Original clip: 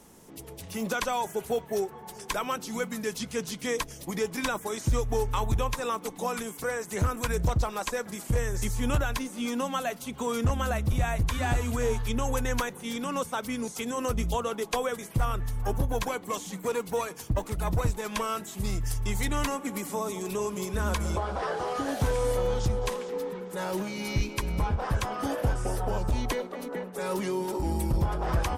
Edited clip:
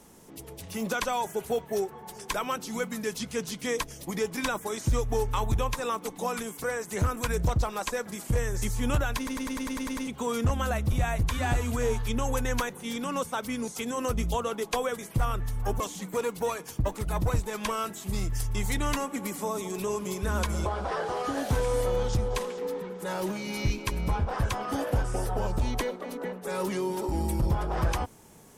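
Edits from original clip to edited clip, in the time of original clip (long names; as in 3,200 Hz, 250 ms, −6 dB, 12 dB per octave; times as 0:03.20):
0:09.17: stutter in place 0.10 s, 9 plays
0:15.80–0:16.31: remove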